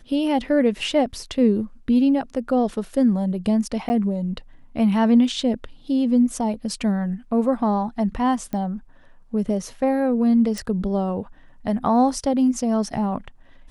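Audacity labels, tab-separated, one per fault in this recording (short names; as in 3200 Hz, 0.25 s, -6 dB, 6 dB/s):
3.890000	3.900000	gap 10 ms
8.530000	8.530000	pop -17 dBFS
10.580000	10.580000	pop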